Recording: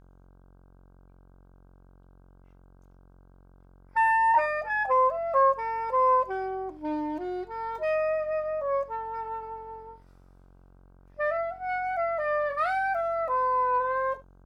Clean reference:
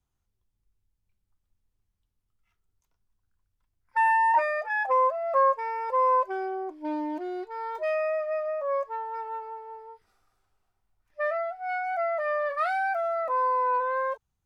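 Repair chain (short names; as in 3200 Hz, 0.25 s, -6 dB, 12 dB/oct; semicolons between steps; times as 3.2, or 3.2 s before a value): de-hum 45.5 Hz, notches 35; inverse comb 72 ms -17.5 dB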